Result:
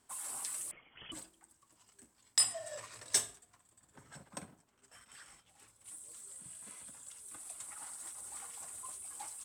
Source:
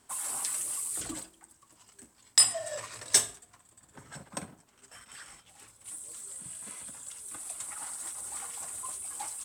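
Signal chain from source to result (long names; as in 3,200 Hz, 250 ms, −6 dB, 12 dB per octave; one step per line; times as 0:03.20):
0:00.71–0:01.12: voice inversion scrambler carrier 3,300 Hz
0:04.33–0:05.76: one half of a high-frequency compander decoder only
level −7.5 dB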